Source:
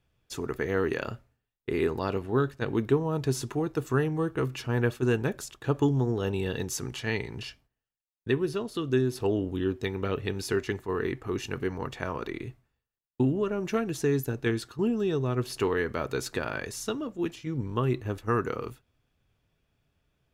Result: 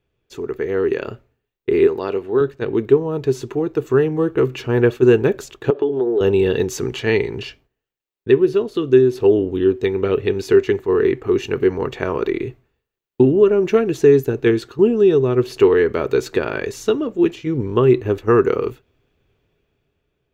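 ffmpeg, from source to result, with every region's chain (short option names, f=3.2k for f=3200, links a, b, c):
-filter_complex "[0:a]asettb=1/sr,asplit=3[a][b][c];[a]atrim=end=1.874[d];[b]atrim=start=1.87:end=2.41,asetpts=PTS-STARTPTS,afade=t=in:d=0.004:c=qsin,afade=t=out:st=0.536:d=0.004:c=qsin,highpass=45,lowshelf=f=210:g=-10[e];[c]atrim=start=2.406[f];[d][e]acrossfade=d=0.004:c1=hsin:c2=qsin[g];[g][f]acrossfade=d=0.004:c1=qsin:c2=hsin,asettb=1/sr,asplit=3[h][i][j];[h]atrim=end=5.704[k];[i]atrim=start=5.7:end=6.21,asetpts=PTS-STARTPTS,afade=t=in:d=0.004:c=qsin,afade=t=out:st=0.506:d=0.004:c=qsin,highpass=370,equalizer=f=390:t=q:w=4:g=5,equalizer=f=620:t=q:w=4:g=3,equalizer=f=1.1k:t=q:w=4:g=-6,equalizer=f=2.2k:t=q:w=4:g=-8,lowpass=f=4k:w=0.5412,lowpass=f=4k:w=1.3066,acompressor=threshold=-30dB:ratio=4:attack=3.2:release=140:knee=1:detection=peak[l];[j]atrim=start=6.206[m];[k][l]acrossfade=d=0.004:c1=hsin:c2=qsin[n];[n][m]acrossfade=d=0.004:c1=qsin:c2=hsin,equalizer=f=400:t=o:w=0.67:g=11,equalizer=f=2.5k:t=o:w=0.67:g=3,equalizer=f=10k:t=o:w=0.67:g=-11,dynaudnorm=f=250:g=9:m=11.5dB,equalizer=f=5.2k:w=6.2:g=-4.5,volume=-1dB"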